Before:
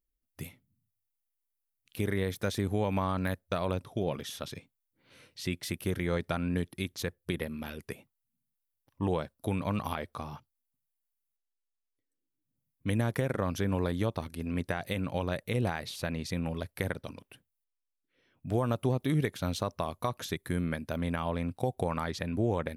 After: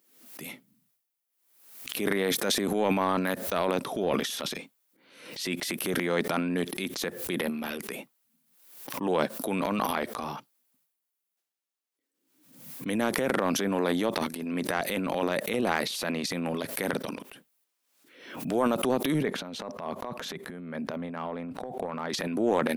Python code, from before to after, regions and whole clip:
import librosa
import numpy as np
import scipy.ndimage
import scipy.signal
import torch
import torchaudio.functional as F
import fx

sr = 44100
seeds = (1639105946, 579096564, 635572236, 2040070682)

y = fx.chain(x, sr, fx.lowpass(hz=1200.0, slope=6),
    fx.peak_eq(hz=320.0, db=-7.0, octaves=0.28),
    fx.over_compress(threshold_db=-38.0, ratio=-1.0), at=(19.22, 22.1))
y = scipy.signal.sosfilt(scipy.signal.butter(4, 200.0, 'highpass', fs=sr, output='sos'), y)
y = fx.transient(y, sr, attack_db=-5, sustain_db=11)
y = fx.pre_swell(y, sr, db_per_s=72.0)
y = y * librosa.db_to_amplitude(5.0)